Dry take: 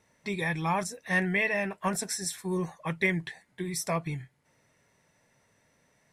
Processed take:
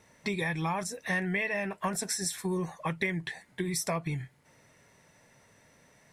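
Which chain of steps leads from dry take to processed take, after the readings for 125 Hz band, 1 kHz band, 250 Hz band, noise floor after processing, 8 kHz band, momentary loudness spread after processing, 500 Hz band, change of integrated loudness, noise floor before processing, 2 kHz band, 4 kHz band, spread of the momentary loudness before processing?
-1.0 dB, -2.5 dB, -1.5 dB, -63 dBFS, +0.5 dB, 7 LU, -2.0 dB, -2.0 dB, -69 dBFS, -3.0 dB, +0.5 dB, 10 LU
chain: compression 4:1, threshold -36 dBFS, peak gain reduction 12.5 dB; trim +6.5 dB

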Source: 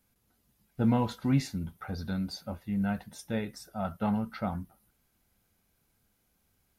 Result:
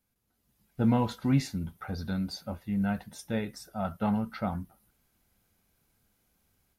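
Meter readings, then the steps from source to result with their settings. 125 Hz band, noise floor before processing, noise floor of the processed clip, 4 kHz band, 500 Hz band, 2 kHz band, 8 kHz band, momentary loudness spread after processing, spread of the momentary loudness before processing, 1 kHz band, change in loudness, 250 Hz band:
+1.0 dB, -74 dBFS, -77 dBFS, +1.0 dB, +1.0 dB, +1.0 dB, +1.0 dB, 11 LU, 12 LU, +1.0 dB, +1.0 dB, +1.0 dB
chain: level rider gain up to 8 dB; trim -7 dB

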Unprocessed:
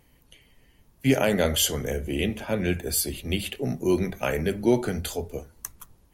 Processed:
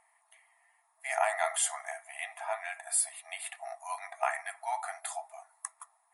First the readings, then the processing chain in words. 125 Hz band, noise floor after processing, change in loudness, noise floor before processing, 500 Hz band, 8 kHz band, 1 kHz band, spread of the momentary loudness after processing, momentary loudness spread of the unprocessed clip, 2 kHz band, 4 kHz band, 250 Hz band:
under -40 dB, -72 dBFS, -8.5 dB, -60 dBFS, -12.5 dB, -2.5 dB, +2.5 dB, 14 LU, 12 LU, -3.5 dB, -14.5 dB, under -40 dB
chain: high-order bell 4 kHz -14.5 dB; comb of notches 1.5 kHz; FFT band-pass 640–11000 Hz; trim +3 dB

